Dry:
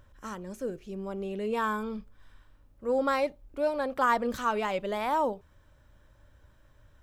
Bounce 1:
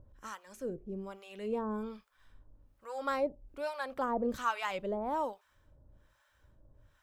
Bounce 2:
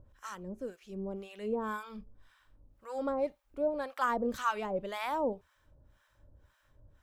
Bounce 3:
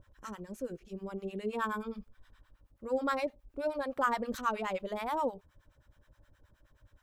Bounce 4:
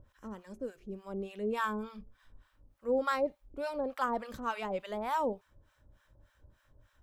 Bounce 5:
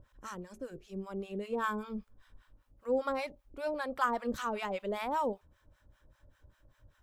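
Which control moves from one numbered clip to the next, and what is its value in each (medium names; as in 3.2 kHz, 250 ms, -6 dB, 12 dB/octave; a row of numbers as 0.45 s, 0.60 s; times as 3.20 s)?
harmonic tremolo, rate: 1.2 Hz, 1.9 Hz, 9.5 Hz, 3.4 Hz, 5.1 Hz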